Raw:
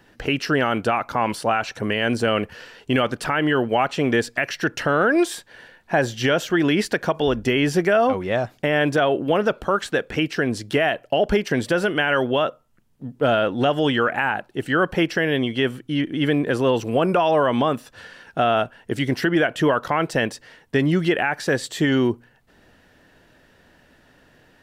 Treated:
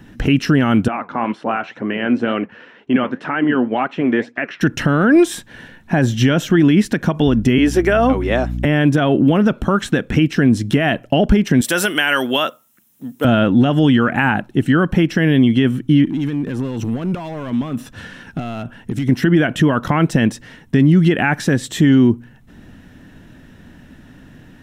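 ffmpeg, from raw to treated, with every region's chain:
ffmpeg -i in.wav -filter_complex "[0:a]asettb=1/sr,asplit=3[link_01][link_02][link_03];[link_01]atrim=end=0.884[link_04];[link_02]atrim=start=0.88:end=4.61,asetpts=PTS-STARTPTS,afade=type=in:duration=0.004:curve=qsin,afade=type=out:start_time=3.726:duration=0.004:curve=qsin,highpass=320,lowpass=2300,flanger=delay=2.5:depth=9.7:regen=66:speed=2:shape=sinusoidal[link_05];[link_03]atrim=start=4.606[link_06];[link_04][link_05]acrossfade=duration=0.004:curve1=hsin:curve2=qsin[link_07];[link_07][link_06]acrossfade=duration=0.004:curve1=qsin:curve2=hsin,asettb=1/sr,asplit=3[link_08][link_09][link_10];[link_08]atrim=end=7.584[link_11];[link_09]atrim=start=7.58:end=8.65,asetpts=PTS-STARTPTS,afade=type=in:duration=0.004:curve=qsin,afade=type=out:start_time=1.066:duration=0.004:curve=qsin,highpass=frequency=290:width=0.5412,highpass=frequency=290:width=1.3066,aeval=exprs='val(0)+0.0141*(sin(2*PI*60*n/s)+sin(2*PI*2*60*n/s)/2+sin(2*PI*3*60*n/s)/3+sin(2*PI*4*60*n/s)/4+sin(2*PI*5*60*n/s)/5)':channel_layout=same[link_12];[link_10]atrim=start=8.646[link_13];[link_11][link_12]acrossfade=duration=0.004:curve1=hsin:curve2=qsin[link_14];[link_14][link_13]acrossfade=duration=0.004:curve1=qsin:curve2=hsin,asettb=1/sr,asplit=3[link_15][link_16][link_17];[link_15]atrim=end=11.614[link_18];[link_16]atrim=start=11.61:end=13.25,asetpts=PTS-STARTPTS,afade=type=in:duration=0.004:curve=qsin,afade=type=out:start_time=1.636:duration=0.004:curve=qsin,highpass=frequency=360:poles=1,aemphasis=mode=production:type=riaa[link_19];[link_17]atrim=start=13.246[link_20];[link_18][link_19]acrossfade=duration=0.004:curve1=hsin:curve2=qsin[link_21];[link_21][link_20]acrossfade=duration=0.004:curve1=qsin:curve2=hsin,asettb=1/sr,asplit=3[link_22][link_23][link_24];[link_22]atrim=end=16.054[link_25];[link_23]atrim=start=16.05:end=19.09,asetpts=PTS-STARTPTS,afade=type=in:duration=0.004:curve=qsin,afade=type=out:start_time=3.036:duration=0.004:curve=qsin,acompressor=threshold=-29dB:ratio=12:attack=3.2:release=140:knee=1:detection=peak,volume=30.5dB,asoftclip=hard,volume=-30.5dB[link_26];[link_24]atrim=start=19.086[link_27];[link_25][link_26]acrossfade=duration=0.004:curve1=hsin:curve2=qsin[link_28];[link_28][link_27]acrossfade=duration=0.004:curve1=qsin:curve2=hsin,lowshelf=frequency=340:width_type=q:width=1.5:gain=9.5,alimiter=limit=-10.5dB:level=0:latency=1:release=191,bandreject=frequency=4600:width=7.2,volume=6dB" out.wav

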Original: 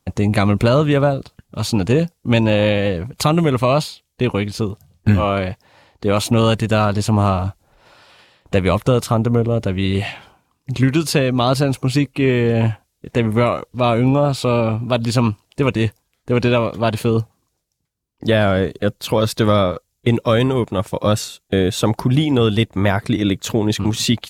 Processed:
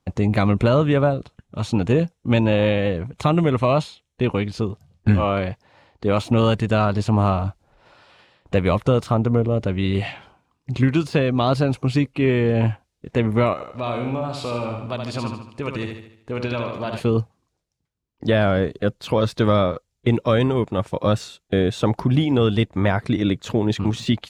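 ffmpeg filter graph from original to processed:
ffmpeg -i in.wav -filter_complex "[0:a]asettb=1/sr,asplit=3[link_01][link_02][link_03];[link_01]atrim=end=0.544[link_04];[link_02]atrim=start=0.54:end=4.32,asetpts=PTS-STARTPTS,afade=type=in:duration=0.004:curve=qsin,afade=type=out:start_time=3.776:duration=0.004:curve=qsin,lowpass=frequency=12000:width=0.5412,lowpass=frequency=12000:width=1.3066,bandreject=frequency=4700:width=6.5[link_05];[link_03]atrim=start=4.316[link_06];[link_04][link_05]acrossfade=duration=0.004:curve1=hsin:curve2=qsin[link_07];[link_07][link_06]acrossfade=duration=0.004:curve1=qsin:curve2=hsin,asettb=1/sr,asplit=3[link_08][link_09][link_10];[link_08]atrim=end=13.534[link_11];[link_09]atrim=start=13.53:end=17,asetpts=PTS-STARTPTS,afade=type=in:duration=0.004:curve=qsin,afade=type=out:start_time=3.466:duration=0.004:curve=qsin,lowshelf=frequency=450:gain=-6.5,acompressor=threshold=-23dB:ratio=2:attack=3.2:release=140:knee=1:detection=peak,aecho=1:1:75|150|225|300|375|450:0.562|0.264|0.124|0.0584|0.0274|0.0129,atrim=end_sample=153027[link_12];[link_10]atrim=start=16.996[link_13];[link_11][link_12]acrossfade=duration=0.004:curve1=hsin:curve2=qsin[link_14];[link_14][link_13]acrossfade=duration=0.004:curve1=qsin:curve2=hsin,lowpass=11000,deesser=0.5,highshelf=frequency=5700:gain=-10.5,volume=-2.5dB" out.wav

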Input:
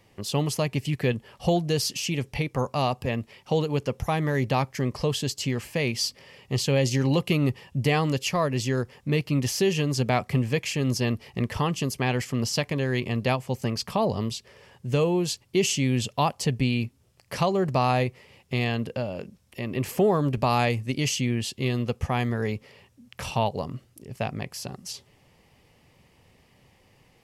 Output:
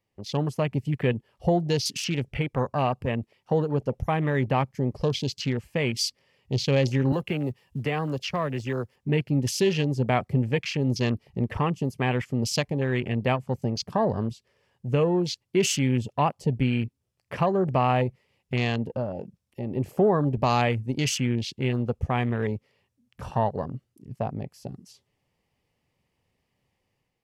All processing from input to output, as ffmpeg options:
ffmpeg -i in.wav -filter_complex "[0:a]asettb=1/sr,asplit=3[link_01][link_02][link_03];[link_01]atrim=end=7.124[link_04];[link_02]atrim=start=7.12:end=8.96,asetpts=PTS-STARTPTS,afade=type=in:duration=0.004:curve=qsin,afade=type=out:start_time=1.836:duration=0.004:curve=qsin,highshelf=frequency=8800:gain=11.5,acrossover=split=170|350|1100|6600[link_05][link_06][link_07][link_08][link_09];[link_05]acompressor=threshold=-35dB:ratio=3[link_10];[link_06]acompressor=threshold=-37dB:ratio=3[link_11];[link_07]acompressor=threshold=-30dB:ratio=3[link_12];[link_08]acompressor=threshold=-31dB:ratio=3[link_13];[link_09]acompressor=threshold=-51dB:ratio=3[link_14];[link_10][link_11][link_12][link_13][link_14]amix=inputs=5:normalize=0,acrusher=bits=6:mode=log:mix=0:aa=0.000001[link_15];[link_03]atrim=start=8.956[link_16];[link_04][link_15]acrossfade=duration=0.004:curve1=hsin:curve2=qsin[link_17];[link_17][link_16]acrossfade=duration=0.004:curve1=qsin:curve2=hsin,afwtdn=0.0178,dynaudnorm=framelen=100:gausssize=7:maxgain=5dB,volume=-4.5dB" out.wav

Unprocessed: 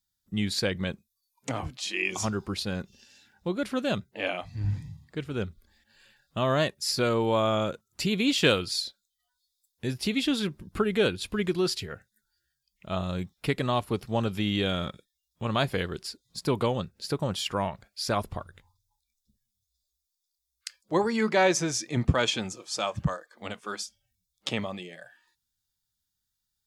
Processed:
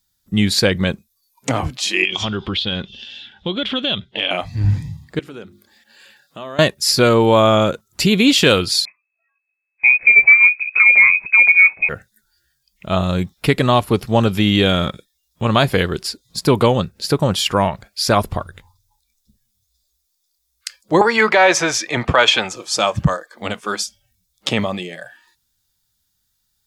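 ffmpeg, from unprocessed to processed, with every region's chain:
ffmpeg -i in.wav -filter_complex "[0:a]asettb=1/sr,asplit=3[link_01][link_02][link_03];[link_01]atrim=end=2.044[link_04];[link_02]atrim=start=2.04:end=4.31,asetpts=PTS-STARTPTS,afade=type=in:duration=0.004:curve=qsin,afade=type=out:start_time=2.266:duration=0.004:curve=qsin,lowpass=frequency=3300:width_type=q:width=12,acompressor=threshold=-32dB:ratio=3:attack=3.2:release=140:knee=1:detection=peak[link_05];[link_03]atrim=start=4.306[link_06];[link_04][link_05]acrossfade=duration=0.004:curve1=hsin:curve2=qsin[link_07];[link_07][link_06]acrossfade=duration=0.004:curve1=qsin:curve2=hsin,asettb=1/sr,asplit=3[link_08][link_09][link_10];[link_08]atrim=end=5.194[link_11];[link_09]atrim=start=5.19:end=6.59,asetpts=PTS-STARTPTS,afade=type=in:duration=0.004:curve=qsin,afade=type=out:start_time=1.396:duration=0.004:curve=qsin,bandreject=frequency=50:width_type=h:width=6,bandreject=frequency=100:width_type=h:width=6,bandreject=frequency=150:width_type=h:width=6,bandreject=frequency=200:width_type=h:width=6,bandreject=frequency=250:width_type=h:width=6,bandreject=frequency=300:width_type=h:width=6,bandreject=frequency=350:width_type=h:width=6,acompressor=threshold=-43dB:ratio=4:attack=3.2:release=140:knee=1:detection=peak,highpass=220[link_12];[link_10]atrim=start=6.586[link_13];[link_11][link_12]acrossfade=duration=0.004:curve1=hsin:curve2=qsin[link_14];[link_14][link_13]acrossfade=duration=0.004:curve1=qsin:curve2=hsin,asettb=1/sr,asplit=3[link_15][link_16][link_17];[link_15]atrim=end=8.854[link_18];[link_16]atrim=start=8.85:end=11.89,asetpts=PTS-STARTPTS,afade=type=in:duration=0.004:curve=qsin,afade=type=out:start_time=3.036:duration=0.004:curve=qsin,tiltshelf=frequency=820:gain=9.5,acrusher=bits=8:mode=log:mix=0:aa=0.000001,lowpass=frequency=2200:width_type=q:width=0.5098,lowpass=frequency=2200:width_type=q:width=0.6013,lowpass=frequency=2200:width_type=q:width=0.9,lowpass=frequency=2200:width_type=q:width=2.563,afreqshift=-2600[link_19];[link_17]atrim=start=11.886[link_20];[link_18][link_19]acrossfade=duration=0.004:curve1=hsin:curve2=qsin[link_21];[link_21][link_20]acrossfade=duration=0.004:curve1=qsin:curve2=hsin,asettb=1/sr,asplit=3[link_22][link_23][link_24];[link_22]atrim=end=21.014[link_25];[link_23]atrim=start=21.01:end=22.56,asetpts=PTS-STARTPTS,afade=type=in:duration=0.004:curve=qsin,afade=type=out:start_time=1.546:duration=0.004:curve=qsin,acrossover=split=520 3700:gain=0.141 1 0.251[link_26][link_27][link_28];[link_26][link_27][link_28]amix=inputs=3:normalize=0,acontrast=61[link_29];[link_24]atrim=start=22.556[link_30];[link_25][link_29]acrossfade=duration=0.004:curve1=hsin:curve2=qsin[link_31];[link_31][link_30]acrossfade=duration=0.004:curve1=qsin:curve2=hsin,equalizer=frequency=12000:width=6.9:gain=4,alimiter=level_in=13.5dB:limit=-1dB:release=50:level=0:latency=1,volume=-1dB" out.wav

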